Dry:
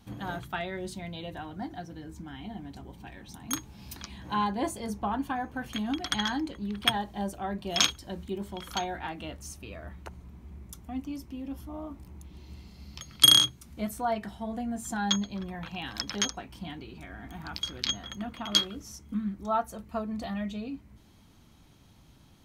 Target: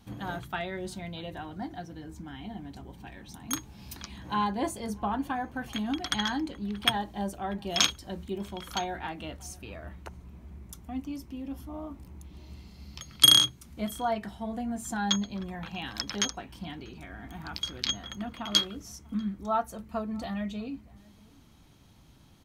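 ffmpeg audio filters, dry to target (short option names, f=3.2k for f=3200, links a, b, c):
-filter_complex "[0:a]asplit=2[a][b];[b]adelay=641.4,volume=-25dB,highshelf=f=4k:g=-14.4[c];[a][c]amix=inputs=2:normalize=0"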